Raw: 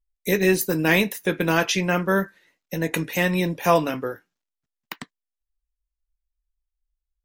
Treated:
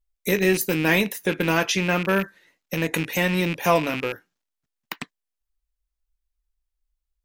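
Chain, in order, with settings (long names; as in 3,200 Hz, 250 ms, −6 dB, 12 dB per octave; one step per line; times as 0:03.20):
loose part that buzzes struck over −36 dBFS, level −19 dBFS
in parallel at −3 dB: downward compressor, threshold −27 dBFS, peak gain reduction 14 dB
on the sum: level −2.5 dB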